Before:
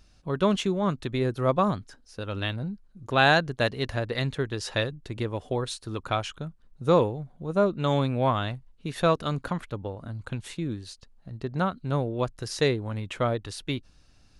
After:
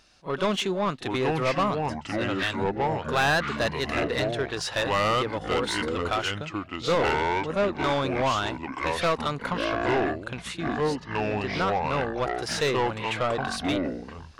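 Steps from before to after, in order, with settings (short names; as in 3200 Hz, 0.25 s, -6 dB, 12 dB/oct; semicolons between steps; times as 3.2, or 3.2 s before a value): echoes that change speed 0.686 s, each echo -5 st, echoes 3; overdrive pedal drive 22 dB, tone 5200 Hz, clips at -6.5 dBFS; pre-echo 39 ms -16 dB; gain -8.5 dB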